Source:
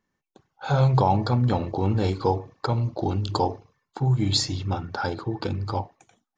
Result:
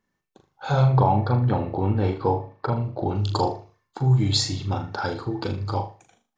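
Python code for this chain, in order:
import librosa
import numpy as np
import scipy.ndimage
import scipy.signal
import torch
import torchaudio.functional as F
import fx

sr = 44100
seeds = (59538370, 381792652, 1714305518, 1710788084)

y = fx.lowpass(x, sr, hz=2500.0, slope=12, at=(0.82, 3.15))
y = fx.room_flutter(y, sr, wall_m=6.7, rt60_s=0.33)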